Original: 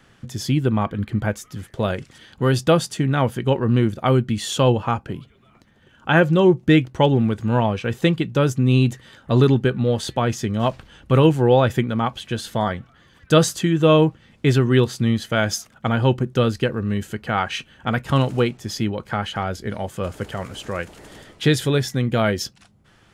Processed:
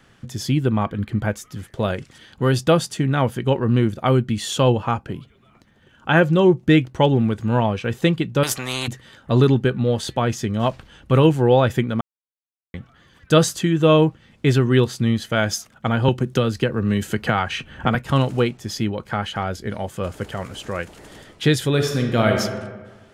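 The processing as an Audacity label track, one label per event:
8.430000	8.880000	every bin compressed towards the loudest bin 4 to 1
12.010000	12.740000	silence
16.080000	17.950000	multiband upward and downward compressor depth 100%
21.690000	22.400000	thrown reverb, RT60 1.4 s, DRR 2.5 dB

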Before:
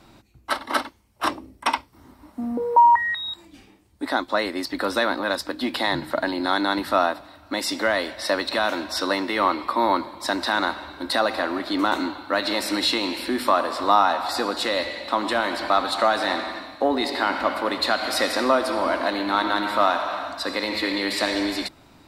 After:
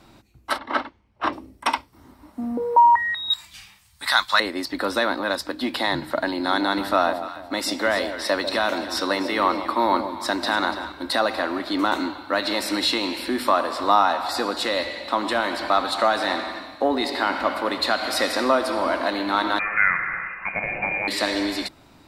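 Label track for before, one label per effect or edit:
0.580000	1.330000	low-pass filter 2,900 Hz
3.300000	4.400000	drawn EQ curve 170 Hz 0 dB, 290 Hz −25 dB, 1,100 Hz +6 dB, 4,500 Hz +13 dB
6.300000	10.920000	delay that swaps between a low-pass and a high-pass 145 ms, split 840 Hz, feedback 50%, level −7 dB
19.590000	21.080000	voice inversion scrambler carrier 2,700 Hz

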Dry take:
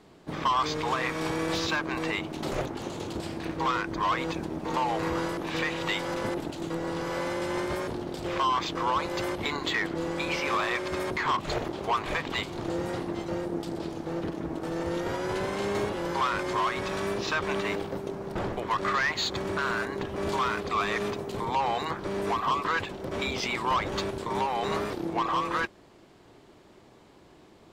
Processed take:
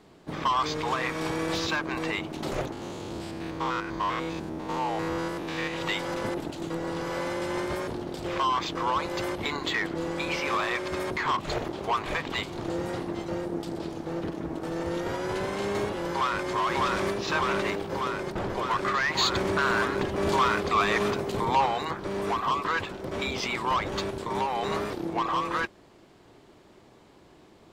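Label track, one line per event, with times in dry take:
2.720000	5.740000	spectrum averaged block by block every 100 ms
16.090000	16.500000	delay throw 600 ms, feedback 80%, level −0.5 dB
19.140000	21.660000	clip gain +4 dB

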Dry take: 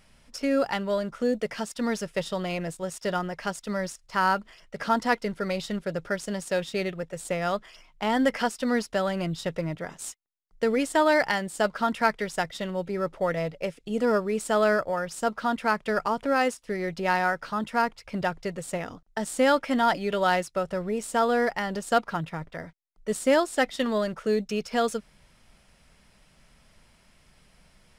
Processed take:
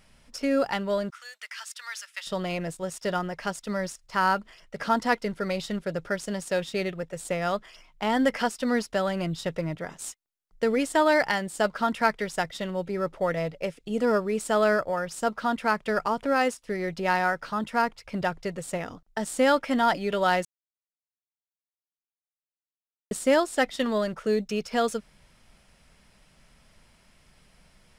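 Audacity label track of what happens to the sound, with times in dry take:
1.100000	2.270000	high-pass filter 1,300 Hz 24 dB per octave
20.450000	23.110000	silence

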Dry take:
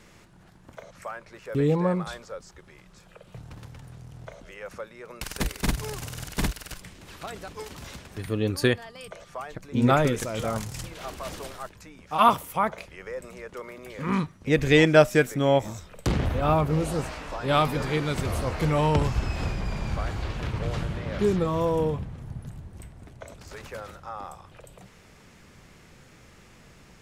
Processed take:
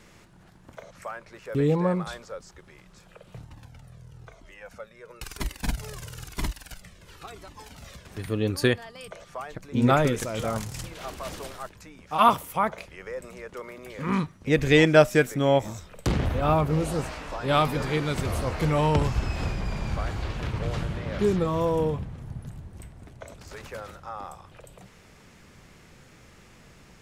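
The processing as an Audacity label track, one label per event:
3.450000	8.060000	flanger whose copies keep moving one way falling 1 Hz

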